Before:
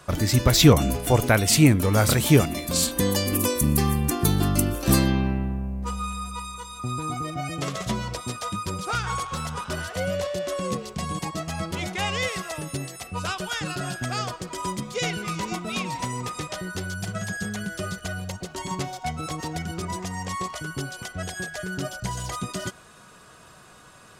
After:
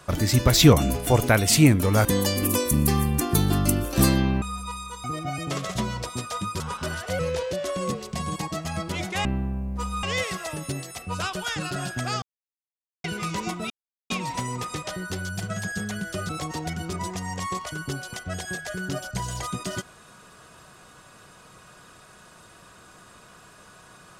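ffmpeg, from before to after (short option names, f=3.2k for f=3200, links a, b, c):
-filter_complex "[0:a]asplit=13[a][b][c][d][e][f][g][h][i][j][k][l][m];[a]atrim=end=2.052[n];[b]atrim=start=2.948:end=5.322[o];[c]atrim=start=6.098:end=6.722[p];[d]atrim=start=7.148:end=8.712[q];[e]atrim=start=9.468:end=10.064[r];[f]atrim=start=10.06:end=10.36,asetpts=PTS-STARTPTS,asetrate=38808,aresample=44100,atrim=end_sample=15034,asetpts=PTS-STARTPTS[s];[g]atrim=start=10.356:end=12.082[t];[h]atrim=start=5.318:end=6.102[u];[i]atrim=start=12.078:end=14.27,asetpts=PTS-STARTPTS,afade=t=out:st=2.188:d=0.004:c=hsin[v];[j]atrim=start=14.27:end=15.09,asetpts=PTS-STARTPTS,volume=0[w];[k]atrim=start=15.09:end=15.75,asetpts=PTS-STARTPTS,afade=t=in:d=0.004:c=hsin,afade=t=out:st=0.656:d=0.004:c=hsin,apad=pad_dur=0.4[x];[l]atrim=start=15.75:end=17.942,asetpts=PTS-STARTPTS,afade=t=in:d=0.004:c=hsin[y];[m]atrim=start=19.178[z];[n][o]acrossfade=d=0.004:c1=hsin:c2=hsin[aa];[aa][p]acrossfade=d=0.004:c1=hsin:c2=hsin[ab];[ab][q]acrossfade=d=0.004:c1=hsin:c2=hsin[ac];[ac][r]acrossfade=d=0.004:c1=hsin:c2=hsin[ad];[ad][s]acrossfade=d=0.004:c1=hsin:c2=hsin[ae];[ae][t]acrossfade=d=0.004:c1=hsin:c2=hsin[af];[af][u]acrossfade=d=0.004:c1=hsin:c2=hsin[ag];[v][w][x][y]concat=n=4:v=0:a=1[ah];[ag][ah]acrossfade=d=0.004:c1=hsin:c2=hsin[ai];[ai][z]acrossfade=d=0.004:c1=hsin:c2=hsin"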